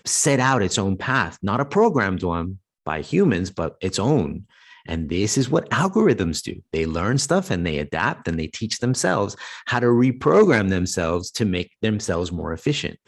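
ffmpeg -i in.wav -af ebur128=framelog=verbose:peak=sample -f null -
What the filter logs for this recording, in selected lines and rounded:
Integrated loudness:
  I:         -21.4 LUFS
  Threshold: -31.6 LUFS
Loudness range:
  LRA:         3.0 LU
  Threshold: -41.7 LUFS
  LRA low:   -23.2 LUFS
  LRA high:  -20.2 LUFS
Sample peak:
  Peak:       -3.4 dBFS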